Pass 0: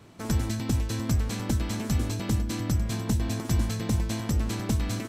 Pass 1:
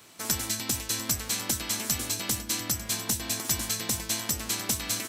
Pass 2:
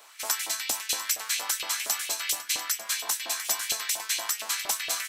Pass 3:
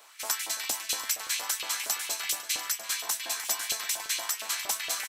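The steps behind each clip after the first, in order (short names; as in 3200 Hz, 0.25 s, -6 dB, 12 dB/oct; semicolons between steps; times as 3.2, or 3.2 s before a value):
tilt +4 dB/oct
LFO high-pass saw up 4.3 Hz 560–3000 Hz
outdoor echo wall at 58 m, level -11 dB; gain -2 dB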